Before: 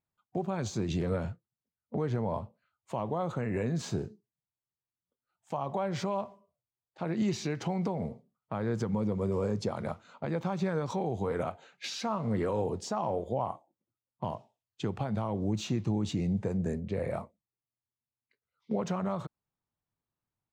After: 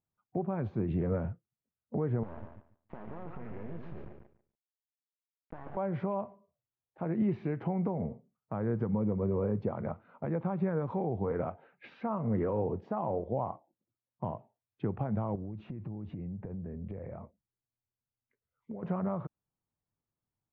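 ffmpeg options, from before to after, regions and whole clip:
-filter_complex "[0:a]asettb=1/sr,asplit=3[a][b][c];[a]atrim=end=2.234[d];[b]atrim=start=2.23:end=5.77,asetpts=PTS-STARTPTS,afade=t=in:d=0.004:c=qsin,afade=t=out:st=3.536:d=0.004:c=qsin,acompressor=threshold=-36dB:ratio=6:attack=3.2:release=140:knee=1:detection=peak,acrusher=bits=5:dc=4:mix=0:aa=0.000001,aecho=1:1:143|286|429:0.473|0.0852|0.0153,atrim=end_sample=156114[e];[c]atrim=start=5.766[f];[d][e]acrossfade=d=0.004:c1=hsin:c2=qsin[g];[g][f]acrossfade=d=0.004:c1=qsin:c2=hsin,asettb=1/sr,asplit=3[h][i][j];[h]atrim=end=15.354[k];[i]atrim=start=15.35:end=18.83,asetpts=PTS-STARTPTS,afade=t=in:d=0.004:c=qsin,afade=t=out:st=3.476:d=0.004:c=qsin,acompressor=threshold=-38dB:ratio=12:attack=3.2:release=140:knee=1:detection=peak,lowshelf=f=81:g=9.5[l];[j]atrim=start=18.826[m];[k][l]acrossfade=d=0.004:c1=hsin:c2=qsin[n];[n][m]acrossfade=d=0.004:c1=qsin:c2=hsin,lowpass=f=2.3k:w=0.5412,lowpass=f=2.3k:w=1.3066,tiltshelf=f=1.2k:g=4.5,volume=-4dB"

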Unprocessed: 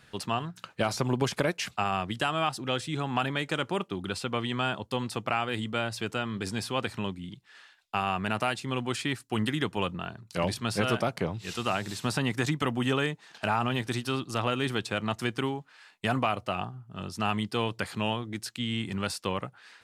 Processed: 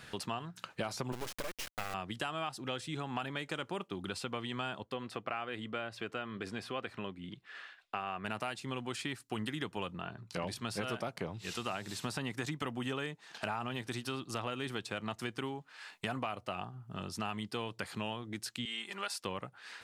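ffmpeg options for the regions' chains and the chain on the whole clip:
-filter_complex "[0:a]asettb=1/sr,asplit=3[a][b][c];[a]atrim=end=1.124[d];[b]atrim=start=1.12:end=1.94,asetpts=PTS-STARTPTS,afade=t=in:d=0.004:c=qsin,afade=t=out:st=0.816:d=0.004:c=qsin,highpass=f=130:p=1,acrusher=bits=3:dc=4:mix=0:aa=0.000001[e];[c]atrim=start=1.936[f];[d][e]acrossfade=d=0.004:c1=hsin:c2=qsin[g];[g][f]acrossfade=d=0.004:c1=qsin:c2=hsin,asettb=1/sr,asplit=3[h][i][j];[h]atrim=end=4.834[k];[i]atrim=start=4.83:end=8.25,asetpts=PTS-STARTPTS,afade=t=in:d=0.004:c=qsin,afade=t=out:st=3.416:d=0.004:c=qsin,bass=f=250:g=-6,treble=f=4k:g=-13,bandreject=f=890:w=6.8[l];[j]atrim=start=8.246[m];[k][l]acrossfade=d=0.004:c1=hsin:c2=qsin[n];[n][m]acrossfade=d=0.004:c1=qsin:c2=hsin,asettb=1/sr,asplit=3[o][p][q];[o]atrim=end=10.014[r];[p]atrim=start=10.01:end=10.47,asetpts=PTS-STARTPTS,afade=t=in:d=0.004:c=qsin,afade=t=out:st=0.456:d=0.004:c=qsin,lowpass=f=3.5k:p=1,asplit=2[s][t];[t]adelay=16,volume=-11.5dB[u];[s][u]amix=inputs=2:normalize=0,atrim=end_sample=20286[v];[q]atrim=start=10.466[w];[r][v]acrossfade=d=0.004:c1=hsin:c2=qsin[x];[x][w]acrossfade=d=0.004:c1=qsin:c2=hsin,asettb=1/sr,asplit=3[y][z][aa];[y]atrim=end=18.654[ab];[z]atrim=start=18.65:end=19.2,asetpts=PTS-STARTPTS,afade=t=in:d=0.004:c=qsin,afade=t=out:st=0.546:d=0.004:c=qsin,highpass=610,aecho=1:1:5:0.72,atrim=end_sample=24255[ac];[aa]atrim=start=19.196[ad];[ab][ac]acrossfade=d=0.004:c1=hsin:c2=qsin[ae];[ae][ad]acrossfade=d=0.004:c1=qsin:c2=hsin,equalizer=f=80:w=0.42:g=-3,acompressor=threshold=-48dB:ratio=2.5,volume=6dB"

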